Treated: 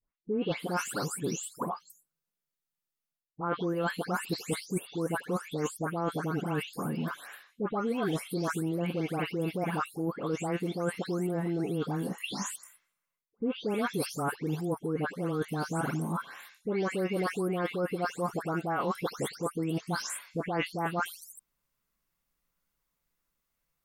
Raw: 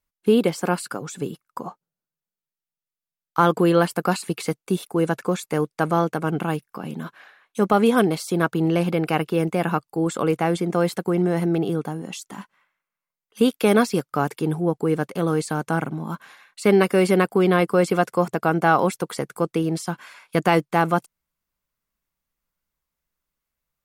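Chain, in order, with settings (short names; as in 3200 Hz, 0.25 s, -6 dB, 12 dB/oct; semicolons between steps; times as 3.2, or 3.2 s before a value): spectral delay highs late, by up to 0.328 s; reverse; compressor 6:1, threshold -31 dBFS, peak gain reduction 18.5 dB; reverse; gain +2 dB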